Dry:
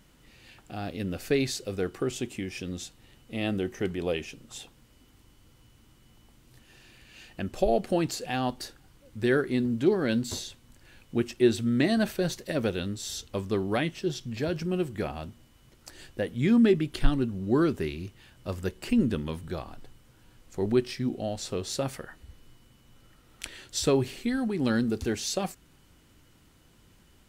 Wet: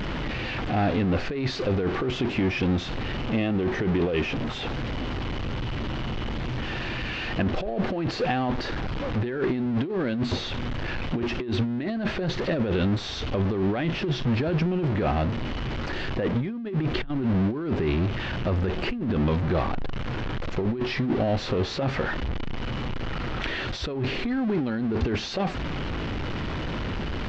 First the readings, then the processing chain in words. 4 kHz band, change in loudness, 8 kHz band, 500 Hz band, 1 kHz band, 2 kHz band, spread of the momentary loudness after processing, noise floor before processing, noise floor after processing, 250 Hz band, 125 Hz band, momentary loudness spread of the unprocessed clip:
+4.5 dB, +1.5 dB, can't be measured, +1.0 dB, +6.5 dB, +6.0 dB, 7 LU, −60 dBFS, −32 dBFS, +2.0 dB, +7.5 dB, 17 LU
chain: converter with a step at zero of −30.5 dBFS
compressor whose output falls as the input rises −29 dBFS, ratio −1
Gaussian smoothing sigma 2.5 samples
level +5 dB

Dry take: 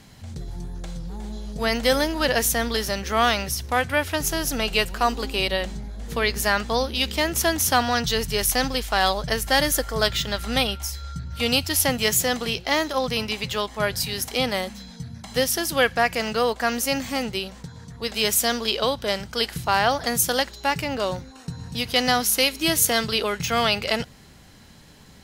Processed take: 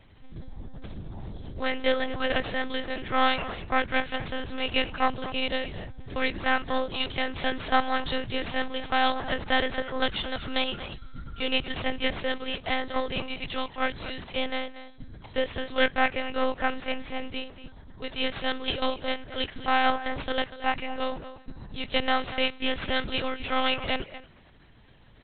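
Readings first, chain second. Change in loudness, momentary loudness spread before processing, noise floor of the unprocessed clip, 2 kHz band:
−6.0 dB, 14 LU, −48 dBFS, −4.0 dB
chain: harmonic generator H 3 −15 dB, 4 −20 dB, 5 −36 dB, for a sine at −6 dBFS
far-end echo of a speakerphone 230 ms, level −13 dB
one-pitch LPC vocoder at 8 kHz 260 Hz

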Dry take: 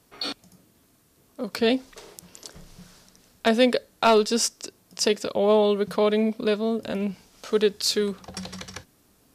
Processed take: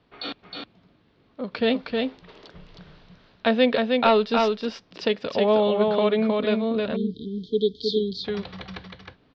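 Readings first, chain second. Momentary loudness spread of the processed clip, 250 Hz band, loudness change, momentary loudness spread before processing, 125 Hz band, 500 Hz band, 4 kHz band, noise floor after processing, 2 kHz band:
16 LU, +1.5 dB, 0.0 dB, 20 LU, can't be measured, +0.5 dB, −2.0 dB, −62 dBFS, +1.0 dB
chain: Butterworth low-pass 4,000 Hz 36 dB per octave
single-tap delay 314 ms −3.5 dB
time-frequency box erased 0:06.96–0:08.25, 460–3,100 Hz
dynamic equaliser 360 Hz, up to −6 dB, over −41 dBFS, Q 5.9

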